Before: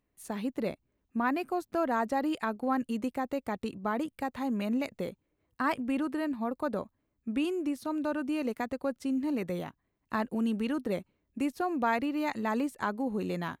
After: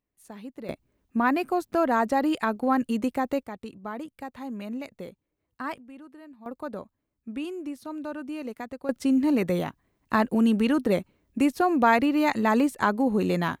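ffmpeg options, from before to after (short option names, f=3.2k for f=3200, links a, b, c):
-af "asetnsamples=n=441:p=0,asendcmd='0.69 volume volume 6dB;3.43 volume volume -4dB;5.78 volume volume -15dB;6.46 volume volume -3dB;8.89 volume volume 8.5dB',volume=-7dB"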